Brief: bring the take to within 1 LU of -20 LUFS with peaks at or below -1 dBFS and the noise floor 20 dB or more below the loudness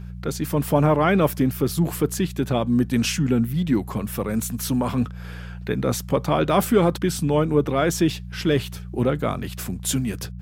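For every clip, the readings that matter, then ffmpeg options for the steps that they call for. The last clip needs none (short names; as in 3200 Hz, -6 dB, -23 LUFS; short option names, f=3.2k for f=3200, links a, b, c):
hum 60 Hz; harmonics up to 180 Hz; hum level -31 dBFS; loudness -22.5 LUFS; peak -5.5 dBFS; loudness target -20.0 LUFS
-> -af "bandreject=f=60:t=h:w=4,bandreject=f=120:t=h:w=4,bandreject=f=180:t=h:w=4"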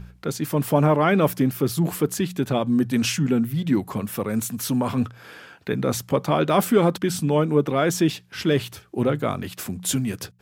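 hum none; loudness -23.0 LUFS; peak -6.0 dBFS; loudness target -20.0 LUFS
-> -af "volume=3dB"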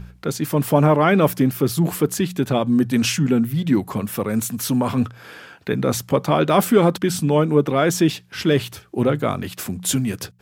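loudness -20.0 LUFS; peak -3.0 dBFS; noise floor -47 dBFS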